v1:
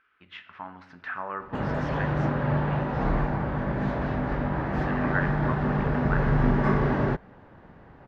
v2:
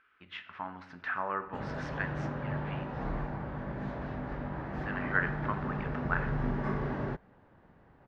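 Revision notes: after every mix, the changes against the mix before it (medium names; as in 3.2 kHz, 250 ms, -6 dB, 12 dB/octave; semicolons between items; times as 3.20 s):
background -10.0 dB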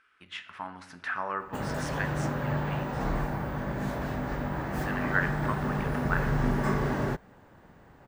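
background +5.0 dB; master: remove distance through air 240 m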